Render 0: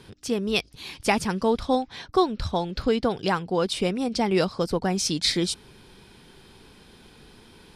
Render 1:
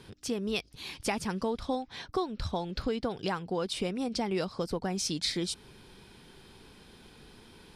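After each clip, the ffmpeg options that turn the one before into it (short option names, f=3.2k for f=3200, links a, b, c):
-af "acompressor=threshold=-27dB:ratio=2.5,volume=-3dB"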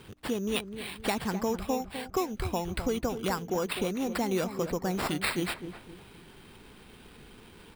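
-filter_complex "[0:a]acrusher=samples=7:mix=1:aa=0.000001,asplit=2[a][b];[b]adelay=255,lowpass=f=1k:p=1,volume=-9dB,asplit=2[c][d];[d]adelay=255,lowpass=f=1k:p=1,volume=0.39,asplit=2[e][f];[f]adelay=255,lowpass=f=1k:p=1,volume=0.39,asplit=2[g][h];[h]adelay=255,lowpass=f=1k:p=1,volume=0.39[i];[a][c][e][g][i]amix=inputs=5:normalize=0,volume=1.5dB"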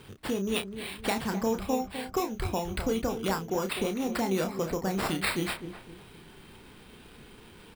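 -filter_complex "[0:a]asplit=2[a][b];[b]adelay=31,volume=-7dB[c];[a][c]amix=inputs=2:normalize=0"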